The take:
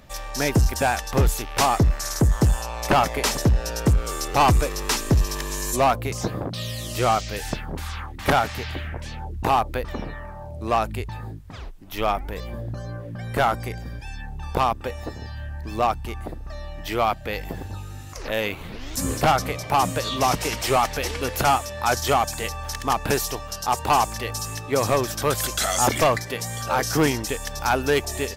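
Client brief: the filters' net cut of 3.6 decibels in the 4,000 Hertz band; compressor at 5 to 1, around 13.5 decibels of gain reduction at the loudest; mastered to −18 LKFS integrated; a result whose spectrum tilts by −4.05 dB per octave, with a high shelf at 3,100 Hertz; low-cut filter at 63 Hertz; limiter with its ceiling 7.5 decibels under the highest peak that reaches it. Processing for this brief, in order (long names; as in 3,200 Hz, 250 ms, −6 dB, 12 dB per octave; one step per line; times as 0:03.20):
high-pass filter 63 Hz
high-shelf EQ 3,100 Hz +4 dB
parametric band 4,000 Hz −8.5 dB
downward compressor 5 to 1, threshold −30 dBFS
level +17 dB
brickwall limiter −6.5 dBFS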